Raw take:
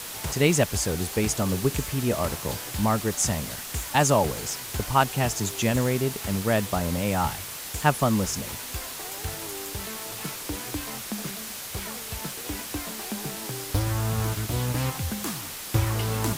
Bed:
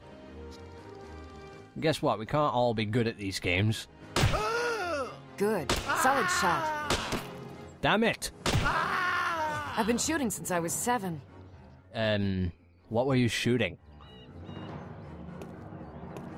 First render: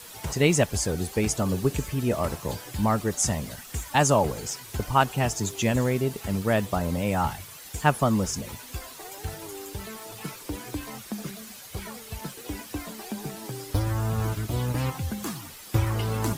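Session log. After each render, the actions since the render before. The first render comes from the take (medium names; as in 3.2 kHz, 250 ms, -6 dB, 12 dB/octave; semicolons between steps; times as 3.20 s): noise reduction 10 dB, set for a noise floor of -37 dBFS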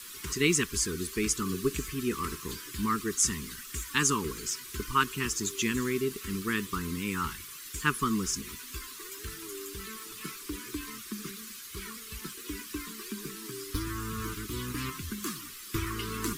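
Chebyshev band-stop 400–1100 Hz, order 3; peaking EQ 110 Hz -14.5 dB 1.2 oct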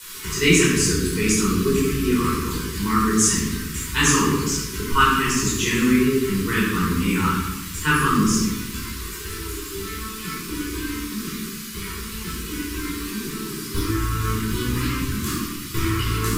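simulated room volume 650 m³, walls mixed, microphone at 4.8 m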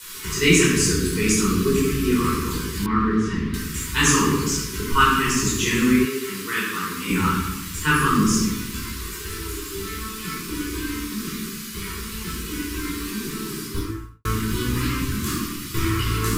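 2.86–3.54 s: distance through air 360 m; 6.05–7.10 s: high-pass 730 Hz 6 dB/octave; 13.58–14.25 s: studio fade out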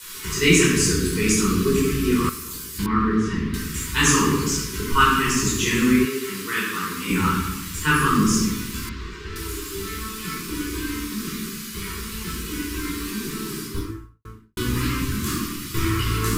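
2.29–2.79 s: pre-emphasis filter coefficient 0.8; 8.89–9.36 s: distance through air 180 m; 13.57–14.57 s: studio fade out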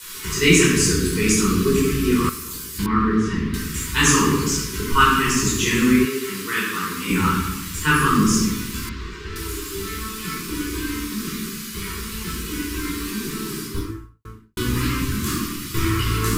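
trim +1.5 dB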